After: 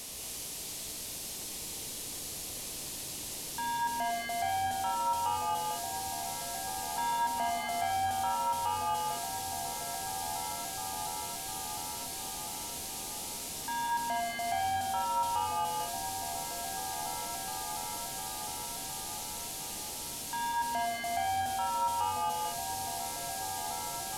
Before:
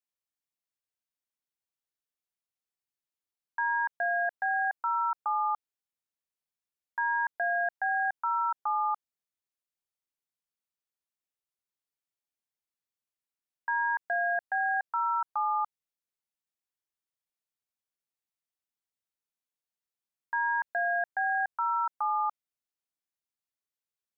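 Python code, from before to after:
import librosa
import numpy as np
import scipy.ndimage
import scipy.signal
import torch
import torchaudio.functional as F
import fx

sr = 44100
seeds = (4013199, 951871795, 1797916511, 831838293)

p1 = fx.delta_mod(x, sr, bps=64000, step_db=-40.5)
p2 = fx.peak_eq(p1, sr, hz=1500.0, db=-13.5, octaves=1.3)
p3 = 10.0 ** (-39.0 / 20.0) * np.tanh(p2 / 10.0 ** (-39.0 / 20.0))
p4 = p3 + fx.echo_opening(p3, sr, ms=707, hz=400, octaves=1, feedback_pct=70, wet_db=-3, dry=0)
p5 = fx.rev_gated(p4, sr, seeds[0], gate_ms=260, shape='rising', drr_db=1.0)
y = p5 * librosa.db_to_amplitude(7.0)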